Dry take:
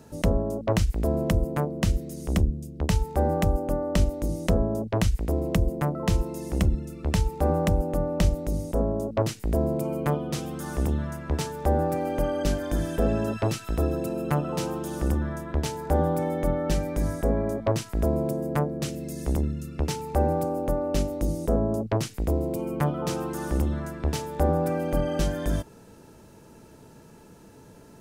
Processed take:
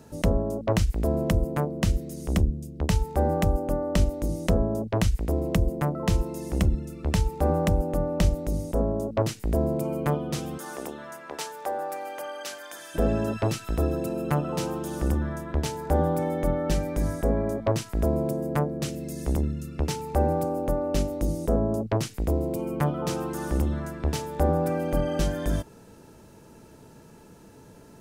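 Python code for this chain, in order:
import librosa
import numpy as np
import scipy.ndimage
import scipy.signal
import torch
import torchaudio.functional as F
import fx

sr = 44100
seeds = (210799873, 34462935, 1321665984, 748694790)

y = fx.highpass(x, sr, hz=fx.line((10.57, 370.0), (12.94, 1300.0)), slope=12, at=(10.57, 12.94), fade=0.02)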